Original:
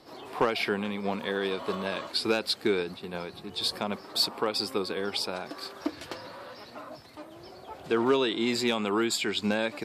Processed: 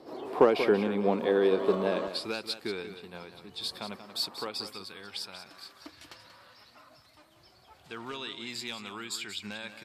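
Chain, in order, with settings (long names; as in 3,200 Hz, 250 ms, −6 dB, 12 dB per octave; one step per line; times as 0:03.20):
parametric band 400 Hz +13 dB 2.5 octaves, from 0:02.08 −3.5 dB, from 0:04.67 −13.5 dB
single-tap delay 185 ms −10.5 dB
level −6 dB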